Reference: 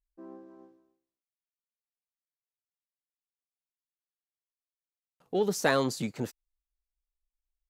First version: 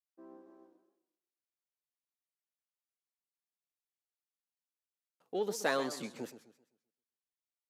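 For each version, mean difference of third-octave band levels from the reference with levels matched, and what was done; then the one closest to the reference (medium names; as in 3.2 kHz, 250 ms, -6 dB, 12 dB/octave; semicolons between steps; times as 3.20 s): 3.0 dB: high-pass 260 Hz 12 dB/octave; resampled via 32 kHz; modulated delay 130 ms, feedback 35%, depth 154 cents, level -13 dB; trim -6 dB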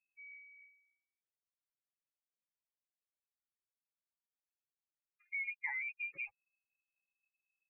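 20.0 dB: spectral contrast enhancement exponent 3.6; frequency inversion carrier 2.6 kHz; compression 4:1, threshold -31 dBFS, peak gain reduction 8.5 dB; trim -6.5 dB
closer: first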